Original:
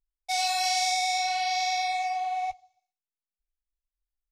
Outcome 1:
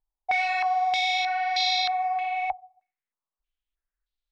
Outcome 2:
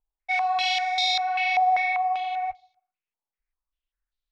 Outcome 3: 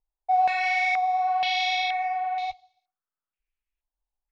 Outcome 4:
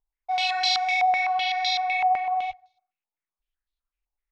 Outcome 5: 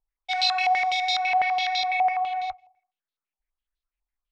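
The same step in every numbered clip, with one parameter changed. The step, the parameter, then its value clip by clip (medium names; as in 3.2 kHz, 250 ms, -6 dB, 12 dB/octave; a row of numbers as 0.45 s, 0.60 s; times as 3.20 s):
step-sequenced low-pass, rate: 3.2 Hz, 5.1 Hz, 2.1 Hz, 7.9 Hz, 12 Hz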